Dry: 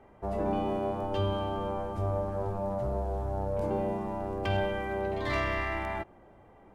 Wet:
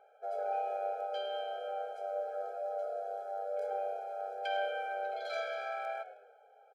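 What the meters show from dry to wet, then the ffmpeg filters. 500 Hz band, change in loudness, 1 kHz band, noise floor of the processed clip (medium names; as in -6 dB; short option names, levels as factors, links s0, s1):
-4.5 dB, -5.5 dB, -2.0 dB, -62 dBFS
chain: -filter_complex "[0:a]equalizer=f=250:t=o:w=1:g=-7,equalizer=f=1000:t=o:w=1:g=11,equalizer=f=4000:t=o:w=1:g=4,asplit=6[s0][s1][s2][s3][s4][s5];[s1]adelay=105,afreqshift=-130,volume=0.158[s6];[s2]adelay=210,afreqshift=-260,volume=0.0822[s7];[s3]adelay=315,afreqshift=-390,volume=0.0427[s8];[s4]adelay=420,afreqshift=-520,volume=0.0224[s9];[s5]adelay=525,afreqshift=-650,volume=0.0116[s10];[s0][s6][s7][s8][s9][s10]amix=inputs=6:normalize=0,afftfilt=real='re*eq(mod(floor(b*sr/1024/430),2),1)':imag='im*eq(mod(floor(b*sr/1024/430),2),1)':win_size=1024:overlap=0.75,volume=0.501"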